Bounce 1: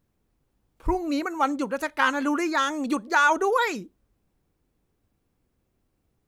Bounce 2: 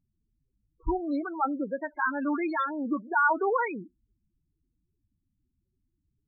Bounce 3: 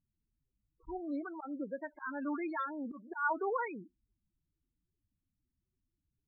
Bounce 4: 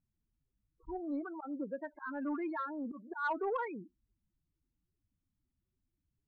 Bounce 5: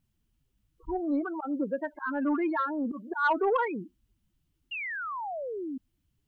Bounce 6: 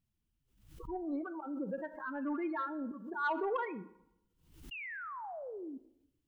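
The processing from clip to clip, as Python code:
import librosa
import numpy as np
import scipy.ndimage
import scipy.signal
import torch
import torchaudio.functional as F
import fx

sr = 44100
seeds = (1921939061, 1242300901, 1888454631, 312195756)

y1 = scipy.signal.sosfilt(scipy.signal.butter(2, 5300.0, 'lowpass', fs=sr, output='sos'), x)
y1 = fx.spec_topn(y1, sr, count=8)
y1 = y1 * 10.0 ** (-3.0 / 20.0)
y2 = scipy.signal.sosfilt(scipy.signal.butter(2, 2900.0, 'lowpass', fs=sr, output='sos'), y1)
y2 = fx.auto_swell(y2, sr, attack_ms=127.0)
y2 = y2 * 10.0 ** (-8.0 / 20.0)
y3 = fx.high_shelf(y2, sr, hz=2700.0, db=-11.5)
y3 = 10.0 ** (-26.0 / 20.0) * np.tanh(y3 / 10.0 ** (-26.0 / 20.0))
y3 = y3 * 10.0 ** (1.0 / 20.0)
y4 = fx.peak_eq(y3, sr, hz=3000.0, db=7.0, octaves=0.31)
y4 = fx.spec_paint(y4, sr, seeds[0], shape='fall', start_s=4.71, length_s=1.07, low_hz=250.0, high_hz=2900.0, level_db=-44.0)
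y4 = y4 * 10.0 ** (9.0 / 20.0)
y5 = fx.rev_plate(y4, sr, seeds[1], rt60_s=0.84, hf_ratio=0.65, predelay_ms=0, drr_db=13.0)
y5 = fx.pre_swell(y5, sr, db_per_s=87.0)
y5 = y5 * 10.0 ** (-8.5 / 20.0)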